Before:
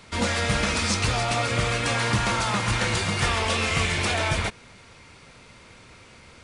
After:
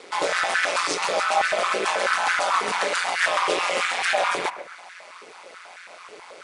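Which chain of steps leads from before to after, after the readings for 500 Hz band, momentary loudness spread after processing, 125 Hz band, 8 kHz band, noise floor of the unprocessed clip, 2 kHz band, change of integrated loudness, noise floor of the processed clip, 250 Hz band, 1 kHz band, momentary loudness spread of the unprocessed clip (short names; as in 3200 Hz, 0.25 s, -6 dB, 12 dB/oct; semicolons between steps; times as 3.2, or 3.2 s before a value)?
+3.5 dB, 19 LU, under -25 dB, -1.5 dB, -50 dBFS, +3.0 dB, +1.5 dB, -45 dBFS, -10.0 dB, +5.0 dB, 1 LU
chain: in parallel at 0 dB: compressor, threshold -39 dBFS, peak gain reduction 18.5 dB; on the sum: ring modulator 88 Hz; analogue delay 0.132 s, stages 2048, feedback 44%, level -12 dB; stepped high-pass 9.2 Hz 430–1600 Hz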